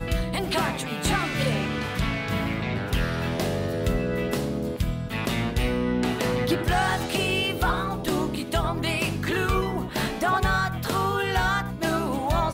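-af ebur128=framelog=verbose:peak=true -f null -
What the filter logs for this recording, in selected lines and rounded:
Integrated loudness:
  I:         -25.8 LUFS
  Threshold: -35.7 LUFS
Loudness range:
  LRA:         2.1 LU
  Threshold: -45.8 LUFS
  LRA low:   -27.1 LUFS
  LRA high:  -25.0 LUFS
True peak:
  Peak:      -13.0 dBFS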